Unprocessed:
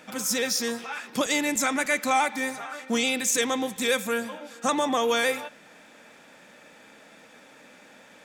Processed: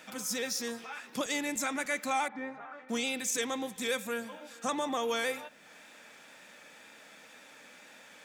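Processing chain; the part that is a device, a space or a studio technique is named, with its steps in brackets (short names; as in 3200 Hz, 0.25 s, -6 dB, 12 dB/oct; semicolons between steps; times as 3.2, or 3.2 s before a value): noise-reduction cassette on a plain deck (mismatched tape noise reduction encoder only; wow and flutter 29 cents; white noise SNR 41 dB); 2.28–2.89 LPF 1600 Hz 12 dB/oct; gain -8 dB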